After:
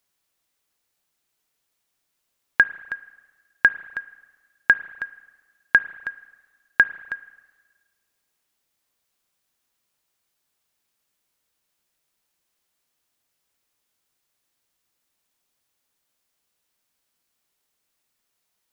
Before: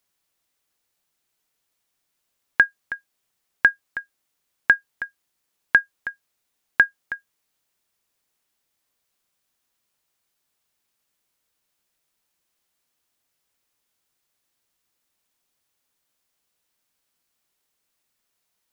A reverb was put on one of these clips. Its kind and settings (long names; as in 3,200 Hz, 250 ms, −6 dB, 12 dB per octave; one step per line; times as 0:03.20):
spring reverb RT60 1.4 s, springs 31/36/50 ms, chirp 45 ms, DRR 16 dB